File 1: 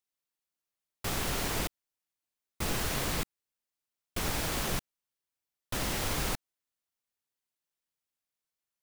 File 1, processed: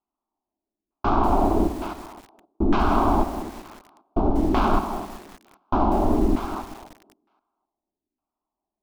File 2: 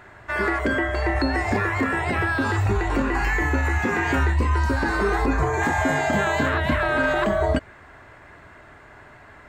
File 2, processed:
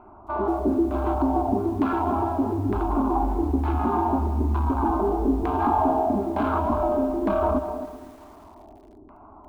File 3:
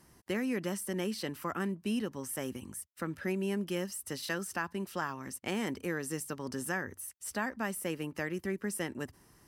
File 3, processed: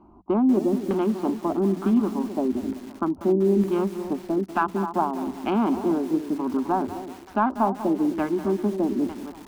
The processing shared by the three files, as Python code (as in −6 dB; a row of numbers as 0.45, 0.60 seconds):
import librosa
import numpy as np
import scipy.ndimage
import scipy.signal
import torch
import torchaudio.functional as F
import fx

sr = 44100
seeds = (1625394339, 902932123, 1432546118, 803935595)

p1 = fx.wiener(x, sr, points=25)
p2 = fx.fold_sine(p1, sr, drive_db=10, ceiling_db=-10.5)
p3 = p1 + (p2 * 10.0 ** (-10.5 / 20.0))
p4 = fx.low_shelf(p3, sr, hz=72.0, db=-2.5)
p5 = fx.fixed_phaser(p4, sr, hz=500.0, stages=6)
p6 = p5 + fx.echo_thinned(p5, sr, ms=260, feedback_pct=26, hz=190.0, wet_db=-10.0, dry=0)
p7 = fx.dynamic_eq(p6, sr, hz=150.0, q=5.2, threshold_db=-47.0, ratio=4.0, max_db=-4)
p8 = scipy.signal.sosfilt(scipy.signal.butter(4, 6000.0, 'lowpass', fs=sr, output='sos'), p7)
p9 = fx.filter_lfo_lowpass(p8, sr, shape='saw_down', hz=1.1, low_hz=320.0, high_hz=2000.0, q=1.6)
p10 = fx.hum_notches(p9, sr, base_hz=60, count=3)
p11 = fx.echo_crushed(p10, sr, ms=192, feedback_pct=55, bits=7, wet_db=-13.0)
y = p11 * 10.0 ** (-24 / 20.0) / np.sqrt(np.mean(np.square(p11)))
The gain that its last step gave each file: +10.0, −3.0, +7.5 decibels